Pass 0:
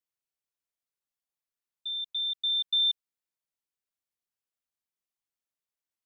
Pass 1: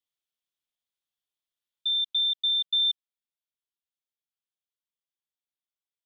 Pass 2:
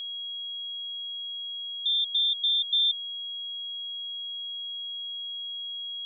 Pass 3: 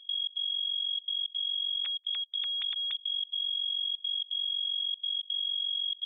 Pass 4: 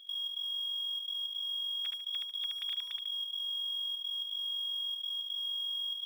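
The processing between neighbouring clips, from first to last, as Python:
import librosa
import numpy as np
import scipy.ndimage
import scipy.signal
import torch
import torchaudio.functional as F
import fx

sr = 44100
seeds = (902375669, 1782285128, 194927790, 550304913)

y1 = fx.peak_eq(x, sr, hz=3400.0, db=12.0, octaves=0.52)
y1 = fx.rider(y1, sr, range_db=10, speed_s=0.5)
y1 = F.gain(torch.from_numpy(y1), -7.0).numpy()
y2 = y1 + 10.0 ** (-33.0 / 20.0) * np.sin(2.0 * np.pi * 3300.0 * np.arange(len(y1)) / sr)
y3 = fx.sine_speech(y2, sr)
y3 = fx.step_gate(y3, sr, bpm=167, pattern='.xx.xxxxxxx', floor_db=-24.0, edge_ms=4.5)
y3 = fx.level_steps(y3, sr, step_db=20)
y3 = F.gain(torch.from_numpy(y3), 7.5).numpy()
y4 = fx.law_mismatch(y3, sr, coded='mu')
y4 = fx.echo_feedback(y4, sr, ms=73, feedback_pct=27, wet_db=-3)
y4 = np.interp(np.arange(len(y4)), np.arange(len(y4))[::2], y4[::2])
y4 = F.gain(torch.from_numpy(y4), -6.5).numpy()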